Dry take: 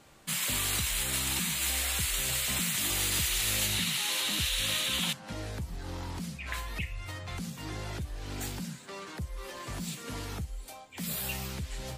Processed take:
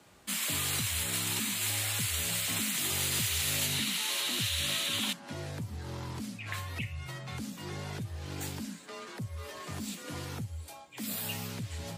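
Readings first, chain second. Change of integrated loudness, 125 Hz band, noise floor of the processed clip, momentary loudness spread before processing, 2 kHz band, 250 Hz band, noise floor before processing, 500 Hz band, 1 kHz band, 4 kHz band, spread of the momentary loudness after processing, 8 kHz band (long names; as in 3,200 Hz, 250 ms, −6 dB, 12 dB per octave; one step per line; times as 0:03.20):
−1.5 dB, 0.0 dB, −49 dBFS, 13 LU, −1.5 dB, 0.0 dB, −48 dBFS, −1.0 dB, −1.5 dB, −1.5 dB, 12 LU, −1.5 dB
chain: frequency shifter +39 Hz
level −1.5 dB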